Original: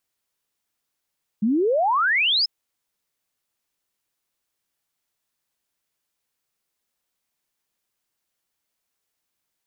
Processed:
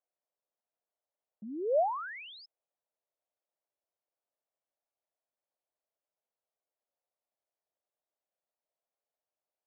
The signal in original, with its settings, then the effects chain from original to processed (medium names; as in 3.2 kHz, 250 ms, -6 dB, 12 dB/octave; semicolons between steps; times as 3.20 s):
log sweep 200 Hz -> 5.3 kHz 1.04 s -17 dBFS
peak limiter -21 dBFS; band-pass filter 620 Hz, Q 3.3